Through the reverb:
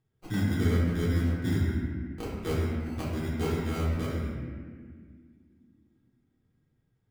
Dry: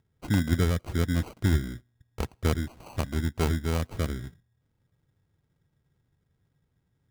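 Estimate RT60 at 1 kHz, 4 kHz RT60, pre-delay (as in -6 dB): 1.6 s, 1.3 s, 3 ms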